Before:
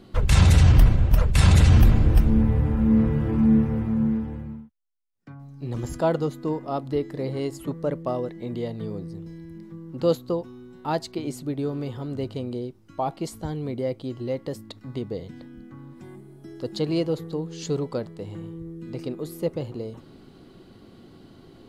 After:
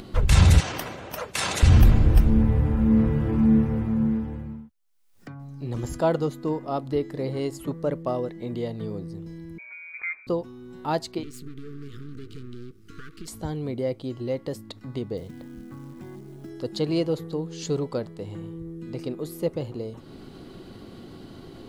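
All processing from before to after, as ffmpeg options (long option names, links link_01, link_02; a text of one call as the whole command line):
ffmpeg -i in.wav -filter_complex "[0:a]asettb=1/sr,asplit=3[link_01][link_02][link_03];[link_01]atrim=end=0.604[link_04];[link_02]atrim=start=0.6:end=1.63,asetpts=PTS-STARTPTS,afade=type=in:duration=0.004:curve=qsin,afade=type=out:start_time=1.026:duration=0.004:curve=qsin,highpass=430,equalizer=frequency=6100:width=7.9:gain=4.5[link_05];[link_03]atrim=start=1.626[link_06];[link_04][link_05]acrossfade=duration=0.004:curve1=hsin:curve2=qsin[link_07];[link_07][link_06]acrossfade=duration=0.004:curve1=qsin:curve2=hsin,asettb=1/sr,asplit=3[link_08][link_09][link_10];[link_08]atrim=end=9.584[link_11];[link_09]atrim=start=9.58:end=10.27,asetpts=PTS-STARTPTS,afade=type=in:duration=0.004:curve=qsin,afade=type=out:start_time=0.686:duration=0.004:curve=qsin,highpass=frequency=380:poles=1,acompressor=threshold=-31dB:ratio=2.5:attack=3.2:release=140:knee=1:detection=peak,lowpass=frequency=2200:width_type=q:width=0.5098,lowpass=frequency=2200:width_type=q:width=0.6013,lowpass=frequency=2200:width_type=q:width=0.9,lowpass=frequency=2200:width_type=q:width=2.563,afreqshift=-2600[link_12];[link_10]atrim=start=10.266[link_13];[link_11][link_12]acrossfade=duration=0.004:curve1=hsin:curve2=qsin[link_14];[link_14][link_13]acrossfade=duration=0.004:curve1=qsin:curve2=hsin,asettb=1/sr,asplit=3[link_15][link_16][link_17];[link_15]atrim=end=11.234[link_18];[link_16]atrim=start=11.23:end=13.28,asetpts=PTS-STARTPTS,afade=type=in:duration=0.004:curve=qsin,afade=type=out:start_time=2.046:duration=0.004:curve=qsin,acompressor=threshold=-32dB:ratio=6:attack=3.2:release=140:knee=1:detection=peak,aeval=exprs='max(val(0),0)':channel_layout=same,asuperstop=centerf=730:order=20:qfactor=1.1[link_19];[link_17]atrim=start=13.276[link_20];[link_18][link_19]acrossfade=duration=0.004:curve1=hsin:curve2=qsin[link_21];[link_21][link_20]acrossfade=duration=0.004:curve1=qsin:curve2=hsin,asettb=1/sr,asplit=3[link_22][link_23][link_24];[link_22]atrim=end=15.174[link_25];[link_23]atrim=start=15.17:end=16.5,asetpts=PTS-STARTPTS,afade=type=in:duration=0.004:curve=qsin,afade=type=out:start_time=1.326:duration=0.004:curve=qsin,lowpass=frequency=2600:poles=1,acrusher=bits=6:mode=log:mix=0:aa=0.000001[link_26];[link_24]atrim=start=16.496[link_27];[link_25][link_26]acrossfade=duration=0.004:curve1=hsin:curve2=qsin[link_28];[link_28][link_27]acrossfade=duration=0.004:curve1=qsin:curve2=hsin,bass=frequency=250:gain=-3,treble=frequency=4000:gain=1,acompressor=mode=upward:threshold=-36dB:ratio=2.5,lowshelf=frequency=160:gain=4" out.wav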